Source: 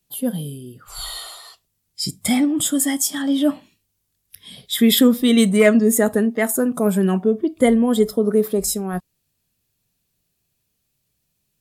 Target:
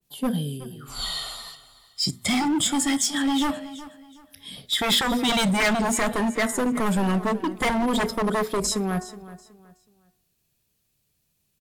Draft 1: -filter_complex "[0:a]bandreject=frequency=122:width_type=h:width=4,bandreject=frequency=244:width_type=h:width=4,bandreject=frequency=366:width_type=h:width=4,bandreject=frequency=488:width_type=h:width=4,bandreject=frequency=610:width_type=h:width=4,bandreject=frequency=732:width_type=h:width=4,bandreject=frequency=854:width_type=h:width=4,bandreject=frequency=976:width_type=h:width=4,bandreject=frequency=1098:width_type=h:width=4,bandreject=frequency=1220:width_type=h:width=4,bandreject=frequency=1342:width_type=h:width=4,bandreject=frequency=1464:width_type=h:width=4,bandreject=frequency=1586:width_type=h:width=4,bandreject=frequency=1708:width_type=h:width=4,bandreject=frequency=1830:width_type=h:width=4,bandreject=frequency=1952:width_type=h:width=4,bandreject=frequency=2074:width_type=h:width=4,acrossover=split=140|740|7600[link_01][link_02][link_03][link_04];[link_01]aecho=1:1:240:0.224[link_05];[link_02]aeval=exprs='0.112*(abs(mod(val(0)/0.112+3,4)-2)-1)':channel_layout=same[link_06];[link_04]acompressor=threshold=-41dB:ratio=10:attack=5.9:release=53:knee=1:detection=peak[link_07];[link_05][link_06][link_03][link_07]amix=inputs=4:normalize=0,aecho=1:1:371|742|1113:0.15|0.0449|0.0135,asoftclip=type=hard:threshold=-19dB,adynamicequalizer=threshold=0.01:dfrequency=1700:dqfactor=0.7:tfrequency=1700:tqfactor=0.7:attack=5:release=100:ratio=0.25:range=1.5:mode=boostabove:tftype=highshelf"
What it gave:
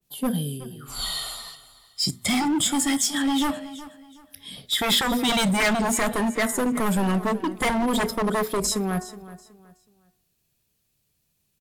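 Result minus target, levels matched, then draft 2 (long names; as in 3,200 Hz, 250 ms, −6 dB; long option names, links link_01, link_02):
downward compressor: peak gain reduction −9 dB
-filter_complex "[0:a]bandreject=frequency=122:width_type=h:width=4,bandreject=frequency=244:width_type=h:width=4,bandreject=frequency=366:width_type=h:width=4,bandreject=frequency=488:width_type=h:width=4,bandreject=frequency=610:width_type=h:width=4,bandreject=frequency=732:width_type=h:width=4,bandreject=frequency=854:width_type=h:width=4,bandreject=frequency=976:width_type=h:width=4,bandreject=frequency=1098:width_type=h:width=4,bandreject=frequency=1220:width_type=h:width=4,bandreject=frequency=1342:width_type=h:width=4,bandreject=frequency=1464:width_type=h:width=4,bandreject=frequency=1586:width_type=h:width=4,bandreject=frequency=1708:width_type=h:width=4,bandreject=frequency=1830:width_type=h:width=4,bandreject=frequency=1952:width_type=h:width=4,bandreject=frequency=2074:width_type=h:width=4,acrossover=split=140|740|7600[link_01][link_02][link_03][link_04];[link_01]aecho=1:1:240:0.224[link_05];[link_02]aeval=exprs='0.112*(abs(mod(val(0)/0.112+3,4)-2)-1)':channel_layout=same[link_06];[link_04]acompressor=threshold=-51dB:ratio=10:attack=5.9:release=53:knee=1:detection=peak[link_07];[link_05][link_06][link_03][link_07]amix=inputs=4:normalize=0,aecho=1:1:371|742|1113:0.15|0.0449|0.0135,asoftclip=type=hard:threshold=-19dB,adynamicequalizer=threshold=0.01:dfrequency=1700:dqfactor=0.7:tfrequency=1700:tqfactor=0.7:attack=5:release=100:ratio=0.25:range=1.5:mode=boostabove:tftype=highshelf"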